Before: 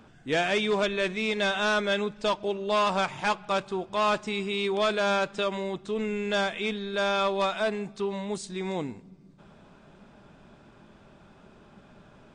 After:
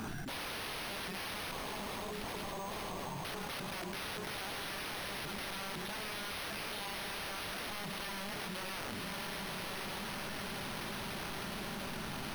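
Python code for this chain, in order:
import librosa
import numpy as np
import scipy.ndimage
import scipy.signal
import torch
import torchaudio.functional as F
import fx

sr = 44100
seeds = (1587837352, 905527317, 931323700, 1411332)

p1 = fx.peak_eq(x, sr, hz=540.0, db=-12.0, octaves=0.33)
p2 = fx.hum_notches(p1, sr, base_hz=60, count=9)
p3 = (np.mod(10.0 ** (32.5 / 20.0) * p2 + 1.0, 2.0) - 1.0) / 10.0 ** (32.5 / 20.0)
p4 = fx.brickwall_lowpass(p3, sr, high_hz=1200.0, at=(1.51, 3.25))
p5 = p4 + fx.echo_diffused(p4, sr, ms=1158, feedback_pct=62, wet_db=-9.0, dry=0)
p6 = np.repeat(p5[::6], 6)[:len(p5)]
p7 = fx.env_flatten(p6, sr, amount_pct=100)
y = F.gain(torch.from_numpy(p7), -6.5).numpy()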